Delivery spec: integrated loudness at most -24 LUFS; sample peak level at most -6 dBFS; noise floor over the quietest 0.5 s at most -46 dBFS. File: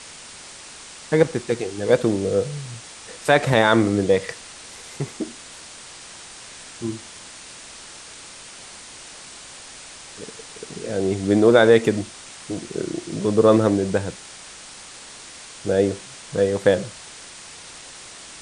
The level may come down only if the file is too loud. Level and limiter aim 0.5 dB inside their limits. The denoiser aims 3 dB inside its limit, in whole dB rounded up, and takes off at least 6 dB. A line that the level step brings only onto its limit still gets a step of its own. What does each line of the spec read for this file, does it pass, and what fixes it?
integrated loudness -20.5 LUFS: fail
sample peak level -2.0 dBFS: fail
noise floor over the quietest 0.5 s -41 dBFS: fail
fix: noise reduction 6 dB, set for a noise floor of -41 dBFS; trim -4 dB; peak limiter -6.5 dBFS

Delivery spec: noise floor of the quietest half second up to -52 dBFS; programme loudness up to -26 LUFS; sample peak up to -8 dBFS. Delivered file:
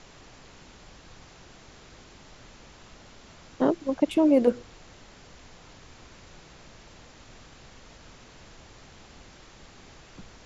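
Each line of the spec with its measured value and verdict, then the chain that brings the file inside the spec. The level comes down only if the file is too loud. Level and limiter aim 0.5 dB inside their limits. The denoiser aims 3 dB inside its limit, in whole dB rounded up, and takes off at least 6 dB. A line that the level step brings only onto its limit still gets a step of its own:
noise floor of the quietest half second -50 dBFS: fail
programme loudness -24.0 LUFS: fail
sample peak -9.0 dBFS: pass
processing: trim -2.5 dB

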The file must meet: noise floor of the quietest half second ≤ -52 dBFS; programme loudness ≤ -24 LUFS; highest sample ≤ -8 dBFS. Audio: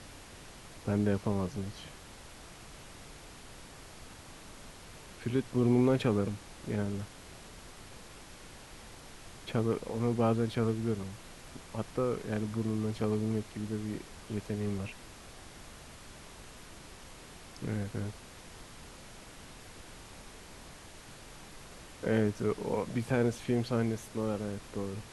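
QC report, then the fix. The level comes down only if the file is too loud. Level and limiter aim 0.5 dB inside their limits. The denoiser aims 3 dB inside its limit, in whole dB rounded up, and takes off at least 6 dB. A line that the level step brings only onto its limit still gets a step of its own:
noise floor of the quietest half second -50 dBFS: fail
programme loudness -33.0 LUFS: pass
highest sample -16.0 dBFS: pass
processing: noise reduction 6 dB, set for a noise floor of -50 dBFS

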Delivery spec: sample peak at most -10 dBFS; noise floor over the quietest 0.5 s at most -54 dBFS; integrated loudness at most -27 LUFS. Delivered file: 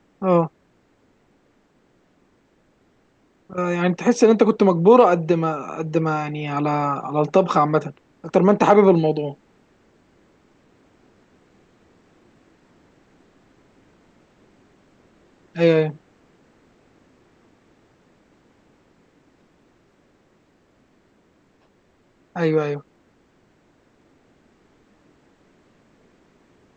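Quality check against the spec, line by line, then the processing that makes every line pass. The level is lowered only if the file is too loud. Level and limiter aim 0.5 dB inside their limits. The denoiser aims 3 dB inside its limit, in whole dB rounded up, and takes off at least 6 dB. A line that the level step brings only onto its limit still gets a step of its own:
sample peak -3.5 dBFS: fail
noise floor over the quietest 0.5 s -61 dBFS: pass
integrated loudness -19.0 LUFS: fail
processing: trim -8.5 dB

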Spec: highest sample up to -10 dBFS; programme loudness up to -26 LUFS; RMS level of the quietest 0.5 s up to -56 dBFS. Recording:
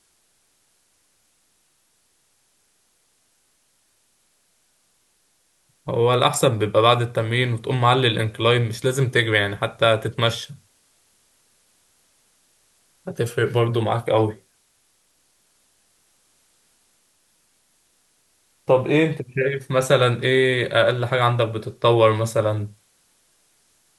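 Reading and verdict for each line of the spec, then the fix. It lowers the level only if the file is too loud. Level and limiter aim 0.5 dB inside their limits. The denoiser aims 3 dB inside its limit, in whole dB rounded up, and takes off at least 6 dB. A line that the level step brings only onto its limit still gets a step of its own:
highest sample -3.0 dBFS: fail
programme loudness -20.0 LUFS: fail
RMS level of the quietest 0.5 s -65 dBFS: pass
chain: trim -6.5 dB; peak limiter -10.5 dBFS

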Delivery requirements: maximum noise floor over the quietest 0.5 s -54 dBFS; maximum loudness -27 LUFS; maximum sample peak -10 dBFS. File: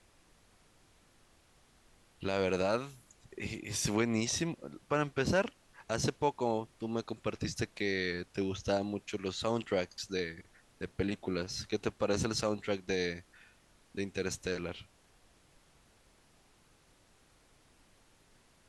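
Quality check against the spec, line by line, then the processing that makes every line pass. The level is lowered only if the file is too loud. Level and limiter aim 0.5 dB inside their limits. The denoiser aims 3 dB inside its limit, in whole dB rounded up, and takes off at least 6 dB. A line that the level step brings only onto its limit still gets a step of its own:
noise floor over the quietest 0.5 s -65 dBFS: pass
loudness -35.0 LUFS: pass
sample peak -16.0 dBFS: pass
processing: none needed

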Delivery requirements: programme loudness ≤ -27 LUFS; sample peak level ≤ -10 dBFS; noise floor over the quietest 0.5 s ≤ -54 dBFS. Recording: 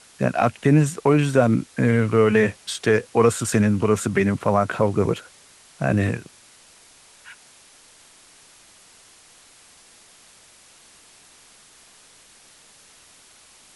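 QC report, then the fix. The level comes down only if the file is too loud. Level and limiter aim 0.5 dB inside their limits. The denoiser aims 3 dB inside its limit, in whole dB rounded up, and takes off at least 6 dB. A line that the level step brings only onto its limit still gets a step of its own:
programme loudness -20.5 LUFS: fail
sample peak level -5.5 dBFS: fail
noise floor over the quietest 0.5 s -51 dBFS: fail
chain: trim -7 dB

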